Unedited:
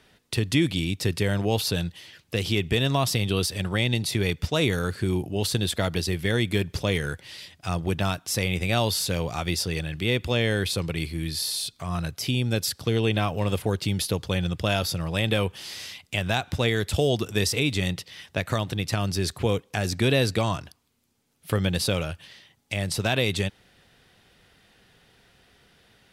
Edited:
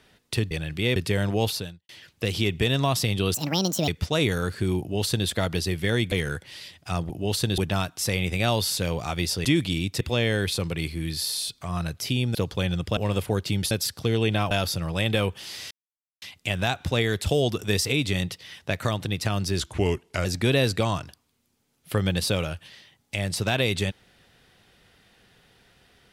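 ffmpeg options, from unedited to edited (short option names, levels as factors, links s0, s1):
-filter_complex "[0:a]asplit=18[s0][s1][s2][s3][s4][s5][s6][s7][s8][s9][s10][s11][s12][s13][s14][s15][s16][s17];[s0]atrim=end=0.512[s18];[s1]atrim=start=9.738:end=10.192[s19];[s2]atrim=start=1.068:end=2,asetpts=PTS-STARTPTS,afade=t=out:st=0.532:d=0.4:c=qua[s20];[s3]atrim=start=2:end=3.454,asetpts=PTS-STARTPTS,afade=t=in:d=0.004:c=hsin[s21];[s4]atrim=start=3.45:end=4.29,asetpts=PTS-STARTPTS,asetrate=68796,aresample=44100,atrim=end_sample=23746,asetpts=PTS-STARTPTS[s22];[s5]atrim=start=4.286:end=6.532[s23];[s6]atrim=start=6.888:end=7.872[s24];[s7]atrim=start=5.208:end=5.692[s25];[s8]atrim=start=7.868:end=9.742[s26];[s9]atrim=start=0.508:end=1.072[s27];[s10]atrim=start=10.188:end=12.532[s28];[s11]atrim=start=14.068:end=14.692[s29];[s12]atrim=start=13.328:end=14.072[s30];[s13]atrim=start=12.528:end=13.332[s31];[s14]atrim=start=14.688:end=15.89,asetpts=PTS-STARTPTS,afade=t=out:st=1.198:d=0.004:c=hsin,apad=pad_dur=0.51[s32];[s15]atrim=start=15.89:end=19.274,asetpts=PTS-STARTPTS,afade=t=in:d=0.004:c=hsin[s33];[s16]atrim=start=19.27:end=19.83,asetpts=PTS-STARTPTS,asetrate=37926,aresample=44100,atrim=end_sample=28716,asetpts=PTS-STARTPTS[s34];[s17]atrim=start=19.826[s35];[s18][s19]acrossfade=d=0.004:c1=hsin:c2=hsin[s36];[s20][s21]concat=n=2:v=0:a=1[s37];[s36][s37]acrossfade=d=0.004:c1=hsin:c2=hsin[s38];[s38][s22]acrossfade=d=0.004:c1=hsin:c2=hsin[s39];[s39][s23]acrossfade=d=0.004:c1=hsin:c2=hsin[s40];[s40][s24]acrossfade=d=0.004:c1=hsin:c2=hsin[s41];[s41][s25]acrossfade=d=0.004:c1=hsin:c2=hsin[s42];[s42][s26]acrossfade=d=0.004:c1=hsin:c2=hsin[s43];[s43][s27]acrossfade=d=0.004:c1=hsin:c2=hsin[s44];[s44][s28]acrossfade=d=0.004:c1=hsin:c2=hsin[s45];[s45][s29]acrossfade=d=0.004:c1=hsin:c2=hsin[s46];[s46][s30]acrossfade=d=0.004:c1=hsin:c2=hsin[s47];[s47][s31]acrossfade=d=0.004:c1=hsin:c2=hsin[s48];[s32][s33]concat=n=2:v=0:a=1[s49];[s48][s49]acrossfade=d=0.004:c1=hsin:c2=hsin[s50];[s50][s34]acrossfade=d=0.004:c1=hsin:c2=hsin[s51];[s51][s35]acrossfade=d=0.004:c1=hsin:c2=hsin"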